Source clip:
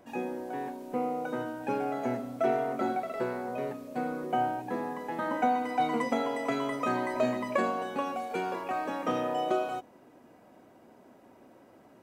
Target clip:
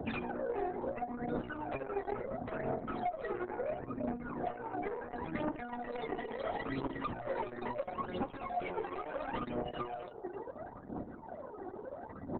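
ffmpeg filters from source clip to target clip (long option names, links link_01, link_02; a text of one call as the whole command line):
ffmpeg -i in.wav -filter_complex "[0:a]highpass=frequency=56:width=0.5412,highpass=frequency=56:width=1.3066,equalizer=frequency=85:width_type=o:width=0.55:gain=6,asplit=2[link_01][link_02];[link_02]adelay=77,lowpass=frequency=4000:poles=1,volume=-19dB,asplit=2[link_03][link_04];[link_04]adelay=77,lowpass=frequency=4000:poles=1,volume=0.27[link_05];[link_03][link_05]amix=inputs=2:normalize=0[link_06];[link_01][link_06]amix=inputs=2:normalize=0,acompressor=threshold=-38dB:ratio=10,asoftclip=type=tanh:threshold=-38dB,afftfilt=real='re*gte(hypot(re,im),0.00126)':imag='im*gte(hypot(re,im),0.00126)':win_size=1024:overlap=0.75,aphaser=in_gain=1:out_gain=1:delay=2.7:decay=0.8:speed=0.75:type=triangular,asetrate=42777,aresample=44100,acrossover=split=86|600[link_07][link_08][link_09];[link_07]acompressor=threshold=-58dB:ratio=4[link_10];[link_08]acompressor=threshold=-48dB:ratio=4[link_11];[link_09]acompressor=threshold=-51dB:ratio=4[link_12];[link_10][link_11][link_12]amix=inputs=3:normalize=0,highshelf=frequency=9000:gain=-4,volume=11dB" -ar 48000 -c:a libopus -b:a 6k out.opus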